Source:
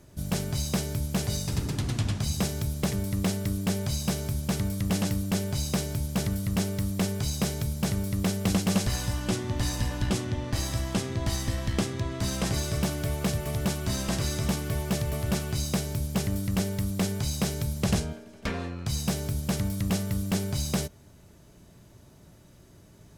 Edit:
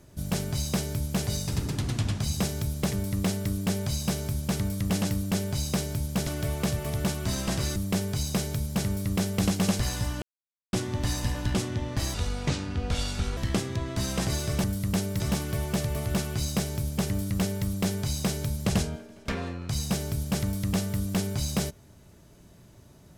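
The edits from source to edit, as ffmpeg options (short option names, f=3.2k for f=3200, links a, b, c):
-filter_complex "[0:a]asplit=8[a][b][c][d][e][f][g][h];[a]atrim=end=6.272[i];[b]atrim=start=12.878:end=14.372[j];[c]atrim=start=6.828:end=9.29,asetpts=PTS-STARTPTS,afade=t=out:st=2.458:d=0.004:c=hsin,apad=pad_dur=0.51[k];[d]atrim=start=9.29:end=10.704,asetpts=PTS-STARTPTS,afade=t=in:d=0.004:c=hsin[l];[e]atrim=start=10.7:end=11.61,asetpts=PTS-STARTPTS,asetrate=32634,aresample=44100,atrim=end_sample=54231,asetpts=PTS-STARTPTS[m];[f]atrim=start=11.606:end=12.882[n];[g]atrim=start=6.268:end=6.832[o];[h]atrim=start=14.368[p];[i][j]acrossfade=d=0.004:c1=hsin:c2=hsin[q];[k][l]concat=n=2:v=0:a=1[r];[q][r]acrossfade=d=0.004:c1=hsin:c2=hsin[s];[s][m]acrossfade=d=0.004:c1=hsin:c2=hsin[t];[t][n]acrossfade=d=0.004:c1=hsin:c2=hsin[u];[u][o]acrossfade=d=0.004:c1=hsin:c2=hsin[v];[v][p]acrossfade=d=0.004:c1=hsin:c2=hsin"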